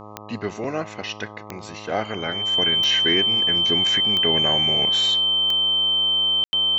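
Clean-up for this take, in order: de-click; de-hum 105.3 Hz, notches 12; notch 3100 Hz, Q 30; room tone fill 6.44–6.53

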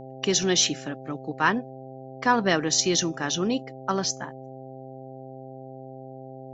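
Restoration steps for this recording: de-hum 131.7 Hz, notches 6

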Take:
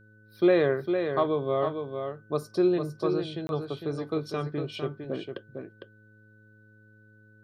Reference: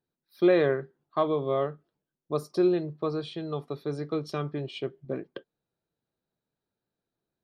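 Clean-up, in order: de-hum 107.3 Hz, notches 5; notch 1500 Hz, Q 30; interpolate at 3.47, 21 ms; inverse comb 0.455 s -6.5 dB

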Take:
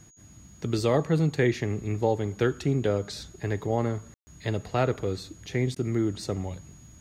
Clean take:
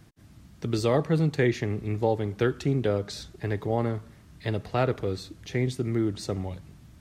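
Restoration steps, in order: notch 6700 Hz, Q 30; room tone fill 4.14–4.27; interpolate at 5.75, 11 ms

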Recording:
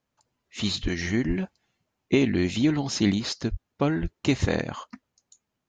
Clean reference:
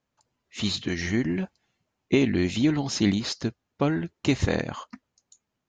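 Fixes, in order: de-plosive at 0.82/1.27/3.5/4.01

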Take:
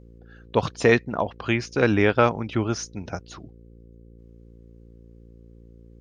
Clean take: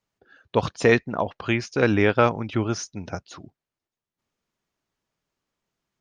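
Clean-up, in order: de-hum 57.3 Hz, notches 9

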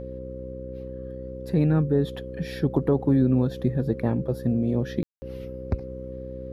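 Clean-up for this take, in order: de-hum 63.7 Hz, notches 7; notch 530 Hz, Q 30; room tone fill 5.03–5.22

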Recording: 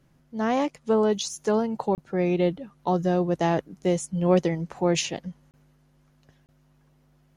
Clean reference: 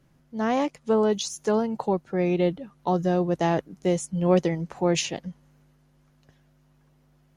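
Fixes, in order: interpolate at 1.95/5.51/6.46, 28 ms

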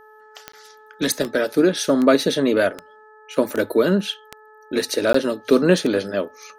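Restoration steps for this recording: de-click; de-hum 430.9 Hz, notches 4; interpolate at 0.52/5.13, 14 ms

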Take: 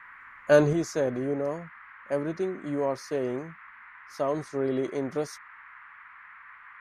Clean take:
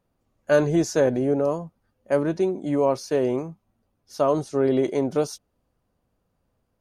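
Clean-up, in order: noise print and reduce 23 dB; gain 0 dB, from 0.73 s +7 dB

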